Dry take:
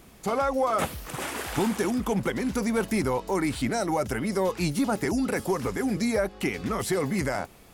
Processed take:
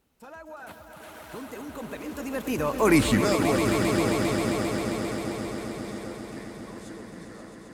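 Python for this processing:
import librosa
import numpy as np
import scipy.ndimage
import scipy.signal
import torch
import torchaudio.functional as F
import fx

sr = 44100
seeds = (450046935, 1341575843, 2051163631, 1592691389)

y = fx.doppler_pass(x, sr, speed_mps=52, closest_m=7.0, pass_at_s=2.98)
y = fx.echo_swell(y, sr, ms=133, loudest=5, wet_db=-9)
y = F.gain(torch.from_numpy(y), 8.5).numpy()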